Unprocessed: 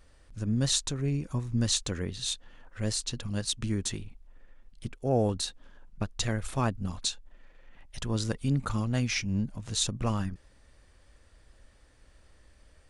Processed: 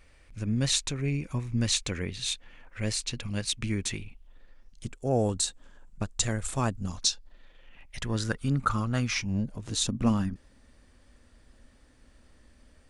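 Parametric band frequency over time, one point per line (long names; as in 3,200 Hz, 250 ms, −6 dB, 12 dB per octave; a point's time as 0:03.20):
parametric band +11.5 dB 0.47 octaves
0:04.02 2,300 Hz
0:04.91 7,700 Hz
0:06.75 7,700 Hz
0:08.44 1,300 Hz
0:09.08 1,300 Hz
0:09.82 240 Hz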